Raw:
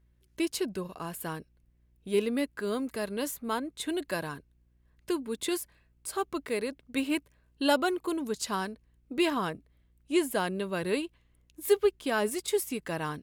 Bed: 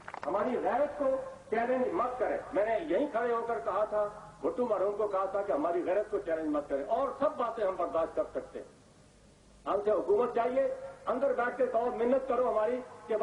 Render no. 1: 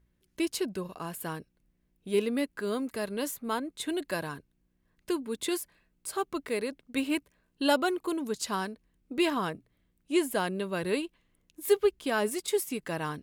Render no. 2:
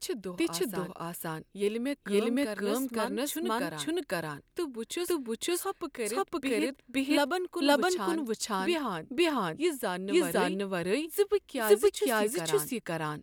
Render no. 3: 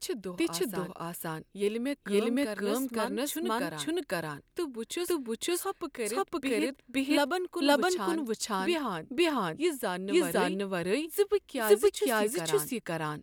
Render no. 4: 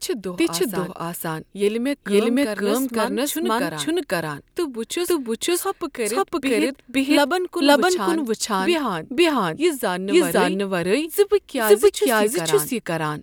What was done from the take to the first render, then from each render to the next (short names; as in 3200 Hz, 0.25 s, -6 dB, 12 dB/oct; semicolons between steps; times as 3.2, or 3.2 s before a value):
de-hum 60 Hz, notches 2
reverse echo 0.514 s -3 dB
nothing audible
gain +9.5 dB; limiter -3 dBFS, peak gain reduction 2 dB